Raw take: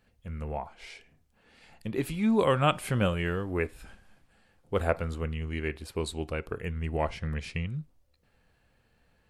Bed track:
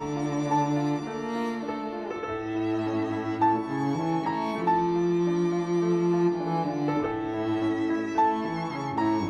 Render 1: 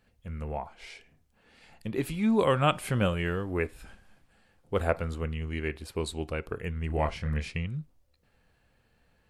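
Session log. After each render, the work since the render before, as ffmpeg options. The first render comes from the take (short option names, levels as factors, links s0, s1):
-filter_complex "[0:a]asettb=1/sr,asplit=3[s0][s1][s2];[s0]atrim=end=6.874[s3];[s1]atrim=start=6.87:end=7.48,asetpts=PTS-STARTPTS,afade=t=in:d=0.004:c=qsin,afade=t=out:st=0.606:d=0.004:c=qsin,asplit=2[s4][s5];[s5]adelay=27,volume=0.562[s6];[s4][s6]amix=inputs=2:normalize=0,atrim=end_sample=26901[s7];[s2]atrim=start=7.476[s8];[s3][s7]acrossfade=d=0.004:c1=hsin:c2=qsin[s9];[s9][s8]acrossfade=d=0.004:c1=qsin:c2=hsin"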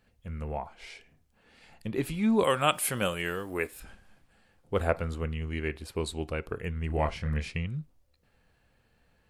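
-filter_complex "[0:a]asettb=1/sr,asplit=3[s0][s1][s2];[s0]atrim=end=2.444[s3];[s1]atrim=start=2.44:end=3.8,asetpts=PTS-STARTPTS,afade=t=in:d=0.004:c=qsin,afade=t=out:st=1.356:d=0.004:c=qsin,aemphasis=mode=production:type=bsi[s4];[s2]atrim=start=3.796[s5];[s3][s4]acrossfade=d=0.004:c1=hsin:c2=qsin[s6];[s6][s5]acrossfade=d=0.004:c1=qsin:c2=hsin"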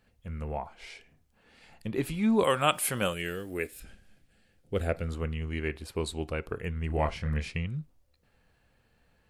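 -filter_complex "[0:a]asettb=1/sr,asplit=3[s0][s1][s2];[s0]atrim=end=3.134[s3];[s1]atrim=start=3.13:end=5.08,asetpts=PTS-STARTPTS,afade=t=in:d=0.004:c=qsin,afade=t=out:st=1.946:d=0.004:c=qsin,equalizer=f=1000:t=o:w=0.86:g=-13.5[s4];[s2]atrim=start=5.076[s5];[s3][s4]acrossfade=d=0.004:c1=hsin:c2=qsin[s6];[s6][s5]acrossfade=d=0.004:c1=qsin:c2=hsin"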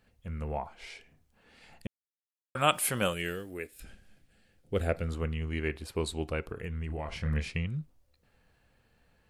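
-filter_complex "[0:a]asettb=1/sr,asplit=3[s0][s1][s2];[s0]atrim=end=6.404[s3];[s1]atrim=start=6.4:end=7.21,asetpts=PTS-STARTPTS,afade=t=in:d=0.004:c=qsin,afade=t=out:st=0.806:d=0.004:c=qsin,acompressor=threshold=0.0251:ratio=10:attack=3.2:release=140:knee=1:detection=peak[s4];[s2]atrim=start=7.206[s5];[s3][s4]acrossfade=d=0.004:c1=hsin:c2=qsin[s6];[s6][s5]acrossfade=d=0.004:c1=qsin:c2=hsin,asplit=4[s7][s8][s9][s10];[s7]atrim=end=1.87,asetpts=PTS-STARTPTS,afade=t=out:st=1.866:d=0.004:c=hsin[s11];[s8]atrim=start=1.87:end=2.55,asetpts=PTS-STARTPTS,volume=0[s12];[s9]atrim=start=2.55:end=3.79,asetpts=PTS-STARTPTS,afade=t=in:d=0.004:c=hsin,afade=t=out:st=0.75:d=0.49:c=qua:silence=0.398107[s13];[s10]atrim=start=3.79,asetpts=PTS-STARTPTS,afade=t=in:d=0.004:c=hsin:silence=0.398107[s14];[s11][s12][s13][s14]concat=n=4:v=0:a=1"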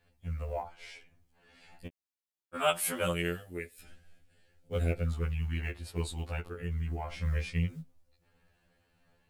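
-af "acrusher=bits=9:mode=log:mix=0:aa=0.000001,afftfilt=real='re*2*eq(mod(b,4),0)':imag='im*2*eq(mod(b,4),0)':win_size=2048:overlap=0.75"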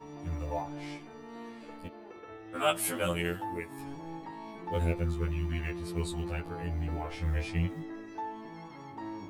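-filter_complex "[1:a]volume=0.168[s0];[0:a][s0]amix=inputs=2:normalize=0"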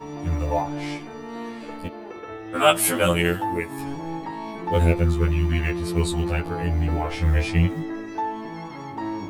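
-af "volume=3.55"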